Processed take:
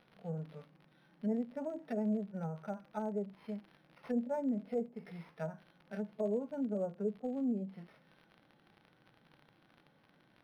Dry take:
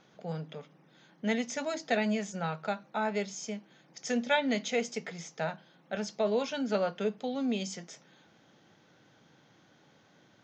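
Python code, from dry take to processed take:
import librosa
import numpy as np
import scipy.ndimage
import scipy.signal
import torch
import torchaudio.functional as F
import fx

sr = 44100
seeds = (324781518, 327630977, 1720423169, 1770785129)

y = fx.vibrato(x, sr, rate_hz=12.0, depth_cents=23.0)
y = fx.hpss(y, sr, part='percussive', gain_db=-14)
y = fx.env_lowpass_down(y, sr, base_hz=550.0, full_db=-30.5)
y = fx.dmg_crackle(y, sr, seeds[0], per_s=160.0, level_db=-46.0)
y = np.interp(np.arange(len(y)), np.arange(len(y))[::6], y[::6])
y = y * 10.0 ** (-2.5 / 20.0)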